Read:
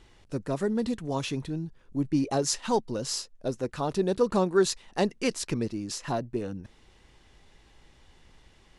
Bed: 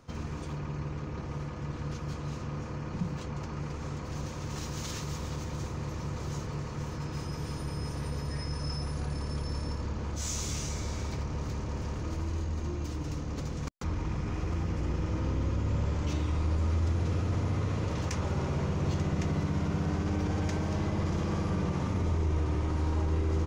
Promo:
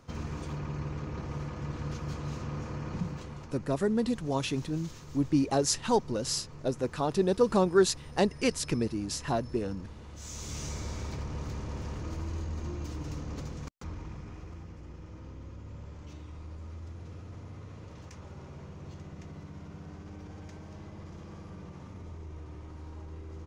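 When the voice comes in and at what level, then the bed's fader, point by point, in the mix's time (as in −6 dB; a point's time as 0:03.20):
3.20 s, 0.0 dB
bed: 0:02.97 0 dB
0:03.69 −12 dB
0:10.10 −12 dB
0:10.66 −2.5 dB
0:13.33 −2.5 dB
0:14.79 −15 dB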